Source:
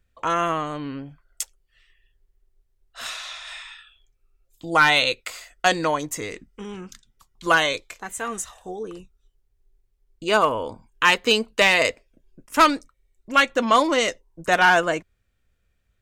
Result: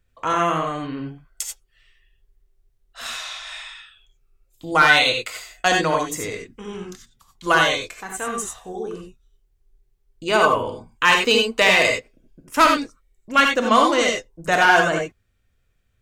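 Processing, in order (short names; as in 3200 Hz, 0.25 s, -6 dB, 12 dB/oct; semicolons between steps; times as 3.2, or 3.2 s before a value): non-linear reverb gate 0.11 s rising, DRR 1.5 dB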